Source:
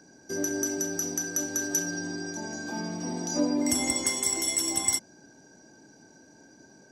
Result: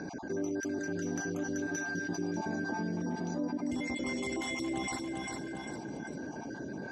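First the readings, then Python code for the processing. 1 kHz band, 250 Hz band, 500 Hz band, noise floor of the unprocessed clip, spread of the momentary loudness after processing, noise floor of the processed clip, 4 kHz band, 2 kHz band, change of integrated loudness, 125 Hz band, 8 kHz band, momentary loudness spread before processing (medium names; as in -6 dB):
-1.0 dB, -2.0 dB, -2.5 dB, -56 dBFS, 7 LU, -43 dBFS, -11.5 dB, -1.5 dB, -8.0 dB, +1.0 dB, -17.5 dB, 10 LU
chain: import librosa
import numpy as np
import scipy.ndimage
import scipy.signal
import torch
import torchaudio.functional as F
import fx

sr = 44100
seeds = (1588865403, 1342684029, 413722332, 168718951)

y = fx.spec_dropout(x, sr, seeds[0], share_pct=29)
y = scipy.signal.sosfilt(scipy.signal.butter(2, 2800.0, 'lowpass', fs=sr, output='sos'), y)
y = fx.low_shelf(y, sr, hz=75.0, db=-9.0)
y = fx.rider(y, sr, range_db=10, speed_s=0.5)
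y = fx.low_shelf(y, sr, hz=330.0, db=7.0)
y = fx.echo_feedback(y, sr, ms=397, feedback_pct=29, wet_db=-11)
y = fx.env_flatten(y, sr, amount_pct=70)
y = F.gain(torch.from_numpy(y), -9.0).numpy()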